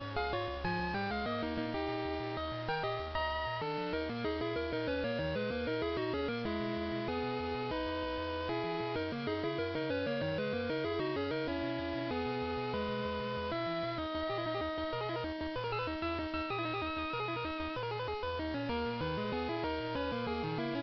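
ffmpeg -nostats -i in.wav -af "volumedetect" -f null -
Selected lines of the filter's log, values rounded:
mean_volume: -36.2 dB
max_volume: -23.5 dB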